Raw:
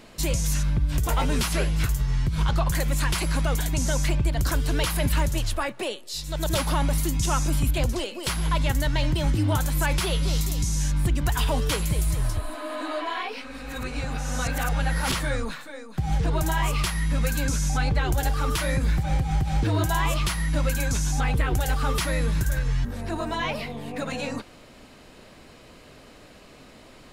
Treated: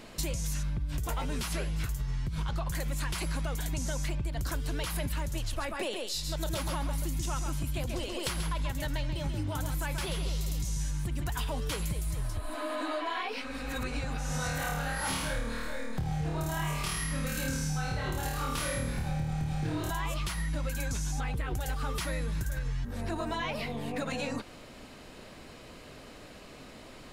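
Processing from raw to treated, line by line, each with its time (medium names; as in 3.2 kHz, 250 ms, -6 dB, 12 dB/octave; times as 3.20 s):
5.39–11.30 s: delay 135 ms -6.5 dB
14.27–19.91 s: flutter echo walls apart 4.5 m, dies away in 0.86 s
whole clip: compression, threshold -30 dBFS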